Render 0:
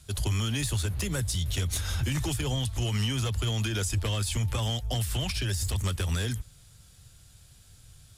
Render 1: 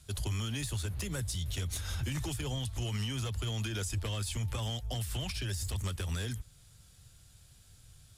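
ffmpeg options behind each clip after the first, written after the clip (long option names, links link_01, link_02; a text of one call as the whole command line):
ffmpeg -i in.wav -af "alimiter=limit=-23dB:level=0:latency=1:release=330,volume=-4dB" out.wav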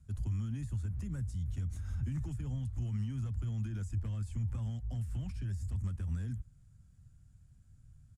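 ffmpeg -i in.wav -af "firequalizer=gain_entry='entry(230,0);entry(400,-15);entry(1500,-13);entry(3600,-27);entry(7100,-17);entry(13000,-26)':delay=0.05:min_phase=1" out.wav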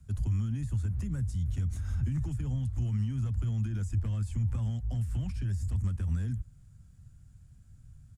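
ffmpeg -i in.wav -filter_complex "[0:a]acrossover=split=220[link_01][link_02];[link_02]acompressor=threshold=-49dB:ratio=2.5[link_03];[link_01][link_03]amix=inputs=2:normalize=0,volume=5.5dB" out.wav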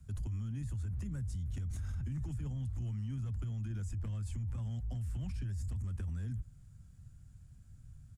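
ffmpeg -i in.wav -af "alimiter=level_in=8dB:limit=-24dB:level=0:latency=1:release=20,volume=-8dB,volume=-1dB" out.wav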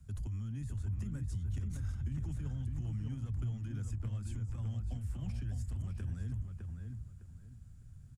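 ffmpeg -i in.wav -filter_complex "[0:a]asplit=2[link_01][link_02];[link_02]adelay=607,lowpass=frequency=2600:poles=1,volume=-4.5dB,asplit=2[link_03][link_04];[link_04]adelay=607,lowpass=frequency=2600:poles=1,volume=0.28,asplit=2[link_05][link_06];[link_06]adelay=607,lowpass=frequency=2600:poles=1,volume=0.28,asplit=2[link_07][link_08];[link_08]adelay=607,lowpass=frequency=2600:poles=1,volume=0.28[link_09];[link_01][link_03][link_05][link_07][link_09]amix=inputs=5:normalize=0,volume=-1dB" out.wav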